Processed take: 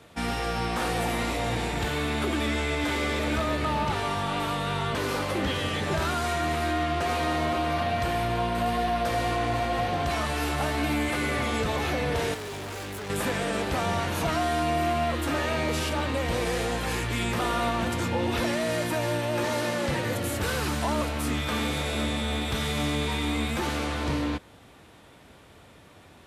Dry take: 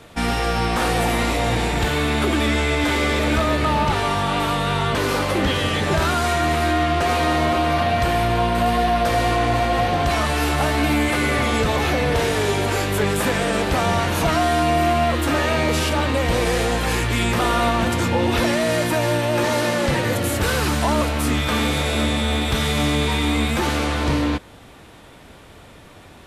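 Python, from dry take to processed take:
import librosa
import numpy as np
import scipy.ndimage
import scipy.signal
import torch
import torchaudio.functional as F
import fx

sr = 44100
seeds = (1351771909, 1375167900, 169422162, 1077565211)

y = scipy.signal.sosfilt(scipy.signal.butter(2, 52.0, 'highpass', fs=sr, output='sos'), x)
y = fx.clip_hard(y, sr, threshold_db=-27.0, at=(12.34, 13.1))
y = y * 10.0 ** (-7.5 / 20.0)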